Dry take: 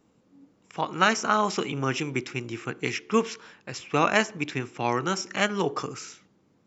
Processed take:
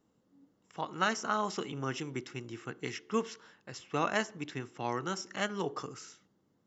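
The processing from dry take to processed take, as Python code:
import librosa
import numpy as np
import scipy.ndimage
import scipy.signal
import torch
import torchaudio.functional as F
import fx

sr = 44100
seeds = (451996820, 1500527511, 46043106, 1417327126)

y = fx.notch(x, sr, hz=2400.0, q=6.0)
y = F.gain(torch.from_numpy(y), -8.5).numpy()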